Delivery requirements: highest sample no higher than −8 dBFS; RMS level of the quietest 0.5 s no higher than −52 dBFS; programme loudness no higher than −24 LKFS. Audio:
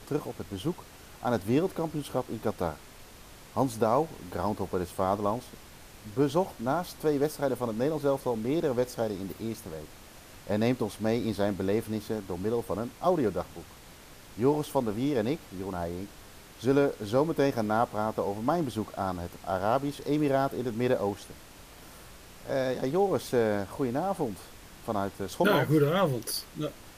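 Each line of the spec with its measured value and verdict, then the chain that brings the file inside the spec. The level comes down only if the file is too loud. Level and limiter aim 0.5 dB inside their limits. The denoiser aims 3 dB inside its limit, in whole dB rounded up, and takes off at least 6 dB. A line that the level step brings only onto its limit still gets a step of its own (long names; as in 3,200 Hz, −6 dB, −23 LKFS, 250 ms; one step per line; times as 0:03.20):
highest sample −12.0 dBFS: in spec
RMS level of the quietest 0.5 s −50 dBFS: out of spec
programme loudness −29.5 LKFS: in spec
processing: broadband denoise 6 dB, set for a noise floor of −50 dBFS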